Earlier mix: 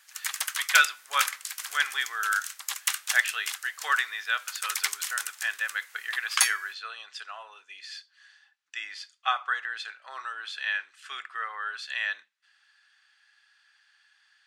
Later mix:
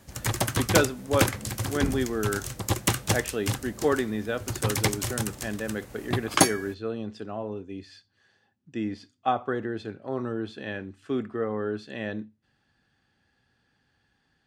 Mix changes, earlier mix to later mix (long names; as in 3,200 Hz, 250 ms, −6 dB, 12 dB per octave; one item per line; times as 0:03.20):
speech −10.0 dB
master: remove high-pass filter 1,300 Hz 24 dB per octave